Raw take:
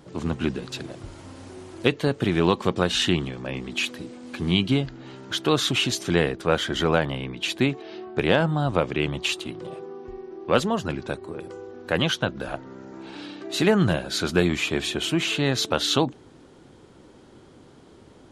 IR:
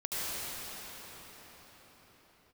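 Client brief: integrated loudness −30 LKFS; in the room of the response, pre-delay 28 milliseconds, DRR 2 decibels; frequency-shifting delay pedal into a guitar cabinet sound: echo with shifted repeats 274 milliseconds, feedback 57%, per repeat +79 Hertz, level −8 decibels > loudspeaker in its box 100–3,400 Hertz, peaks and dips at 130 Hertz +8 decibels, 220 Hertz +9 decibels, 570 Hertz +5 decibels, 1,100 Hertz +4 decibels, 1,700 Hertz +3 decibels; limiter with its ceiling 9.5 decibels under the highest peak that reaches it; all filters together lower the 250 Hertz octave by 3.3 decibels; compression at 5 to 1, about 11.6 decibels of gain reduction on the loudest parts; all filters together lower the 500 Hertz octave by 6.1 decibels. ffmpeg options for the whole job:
-filter_complex "[0:a]equalizer=frequency=250:width_type=o:gain=-8.5,equalizer=frequency=500:width_type=o:gain=-8,acompressor=threshold=-33dB:ratio=5,alimiter=level_in=1.5dB:limit=-24dB:level=0:latency=1,volume=-1.5dB,asplit=2[link_01][link_02];[1:a]atrim=start_sample=2205,adelay=28[link_03];[link_02][link_03]afir=irnorm=-1:irlink=0,volume=-10dB[link_04];[link_01][link_04]amix=inputs=2:normalize=0,asplit=8[link_05][link_06][link_07][link_08][link_09][link_10][link_11][link_12];[link_06]adelay=274,afreqshift=79,volume=-8dB[link_13];[link_07]adelay=548,afreqshift=158,volume=-12.9dB[link_14];[link_08]adelay=822,afreqshift=237,volume=-17.8dB[link_15];[link_09]adelay=1096,afreqshift=316,volume=-22.6dB[link_16];[link_10]adelay=1370,afreqshift=395,volume=-27.5dB[link_17];[link_11]adelay=1644,afreqshift=474,volume=-32.4dB[link_18];[link_12]adelay=1918,afreqshift=553,volume=-37.3dB[link_19];[link_05][link_13][link_14][link_15][link_16][link_17][link_18][link_19]amix=inputs=8:normalize=0,highpass=100,equalizer=frequency=130:width_type=q:width=4:gain=8,equalizer=frequency=220:width_type=q:width=4:gain=9,equalizer=frequency=570:width_type=q:width=4:gain=5,equalizer=frequency=1100:width_type=q:width=4:gain=4,equalizer=frequency=1700:width_type=q:width=4:gain=3,lowpass=frequency=3400:width=0.5412,lowpass=frequency=3400:width=1.3066,volume=4.5dB"

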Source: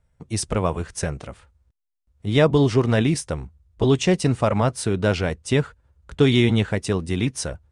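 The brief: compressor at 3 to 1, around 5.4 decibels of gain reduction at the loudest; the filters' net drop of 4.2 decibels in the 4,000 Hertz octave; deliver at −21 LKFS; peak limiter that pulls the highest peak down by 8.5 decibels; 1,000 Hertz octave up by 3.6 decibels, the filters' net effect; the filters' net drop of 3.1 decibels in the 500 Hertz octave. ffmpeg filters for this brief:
ffmpeg -i in.wav -af "equalizer=frequency=500:width_type=o:gain=-5.5,equalizer=frequency=1000:width_type=o:gain=6.5,equalizer=frequency=4000:width_type=o:gain=-6,acompressor=threshold=-21dB:ratio=3,volume=9dB,alimiter=limit=-10dB:level=0:latency=1" out.wav

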